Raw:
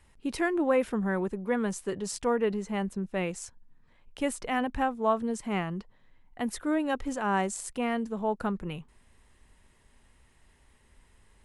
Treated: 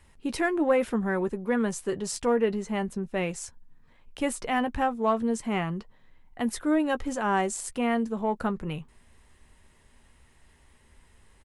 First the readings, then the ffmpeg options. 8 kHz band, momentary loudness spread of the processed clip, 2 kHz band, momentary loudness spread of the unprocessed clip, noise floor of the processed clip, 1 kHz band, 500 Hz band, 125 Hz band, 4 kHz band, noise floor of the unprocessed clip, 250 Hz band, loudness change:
+3.0 dB, 8 LU, +2.0 dB, 9 LU, -59 dBFS, +2.0 dB, +2.0 dB, +1.5 dB, +2.5 dB, -62 dBFS, +2.5 dB, +2.5 dB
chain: -filter_complex "[0:a]asplit=2[a][b];[b]asoftclip=type=tanh:threshold=-23dB,volume=-9dB[c];[a][c]amix=inputs=2:normalize=0,asplit=2[d][e];[e]adelay=13,volume=-11.5dB[f];[d][f]amix=inputs=2:normalize=0"

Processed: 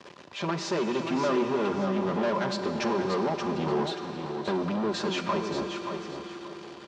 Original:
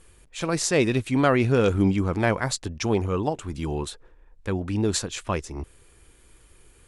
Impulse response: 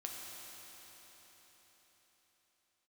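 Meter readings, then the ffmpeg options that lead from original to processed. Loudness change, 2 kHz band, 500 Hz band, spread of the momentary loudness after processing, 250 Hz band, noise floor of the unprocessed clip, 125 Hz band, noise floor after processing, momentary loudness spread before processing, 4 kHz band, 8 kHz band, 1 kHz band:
-4.5 dB, -5.0 dB, -2.5 dB, 9 LU, -3.5 dB, -56 dBFS, -10.5 dB, -47 dBFS, 14 LU, -2.0 dB, -12.5 dB, +0.5 dB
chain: -filter_complex "[0:a]highshelf=f=4.2k:g=-12,bandreject=f=60:t=h:w=6,bandreject=f=120:t=h:w=6,bandreject=f=180:t=h:w=6,aecho=1:1:5:0.86,dynaudnorm=f=200:g=11:m=11.5dB,alimiter=limit=-11.5dB:level=0:latency=1:release=486,acompressor=threshold=-24dB:ratio=2.5,acrusher=bits=7:mix=0:aa=0.000001,asoftclip=type=tanh:threshold=-30.5dB,highpass=f=120:w=0.5412,highpass=f=120:w=1.3066,equalizer=f=130:t=q:w=4:g=-7,equalizer=f=360:t=q:w=4:g=3,equalizer=f=560:t=q:w=4:g=4,equalizer=f=1k:t=q:w=4:g=7,equalizer=f=2.2k:t=q:w=4:g=-3,lowpass=f=5.5k:w=0.5412,lowpass=f=5.5k:w=1.3066,aecho=1:1:579|1158|1737:0.447|0.125|0.035,asplit=2[a][b];[1:a]atrim=start_sample=2205[c];[b][c]afir=irnorm=-1:irlink=0,volume=-1.5dB[d];[a][d]amix=inputs=2:normalize=0"

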